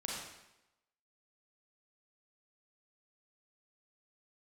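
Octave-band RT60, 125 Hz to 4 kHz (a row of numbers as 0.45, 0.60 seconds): 0.85, 0.90, 0.90, 0.90, 0.90, 0.80 seconds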